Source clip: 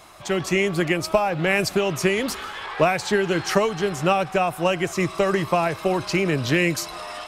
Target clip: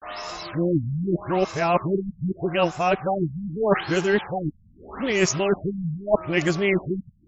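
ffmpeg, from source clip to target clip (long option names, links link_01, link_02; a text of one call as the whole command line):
ffmpeg -i in.wav -af "areverse,aexciter=amount=2.7:drive=5.2:freq=5200,afftfilt=real='re*lt(b*sr/1024,230*pow(7800/230,0.5+0.5*sin(2*PI*0.81*pts/sr)))':imag='im*lt(b*sr/1024,230*pow(7800/230,0.5+0.5*sin(2*PI*0.81*pts/sr)))':win_size=1024:overlap=0.75" out.wav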